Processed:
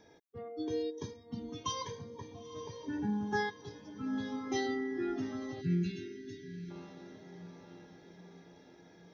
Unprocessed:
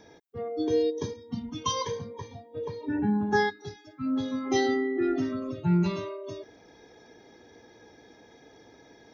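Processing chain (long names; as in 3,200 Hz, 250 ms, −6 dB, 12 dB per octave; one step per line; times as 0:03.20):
feedback delay with all-pass diffusion 926 ms, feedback 53%, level −13 dB
time-frequency box erased 0:05.61–0:06.71, 450–1,400 Hz
dynamic equaliser 520 Hz, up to −4 dB, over −38 dBFS, Q 1.7
level −7.5 dB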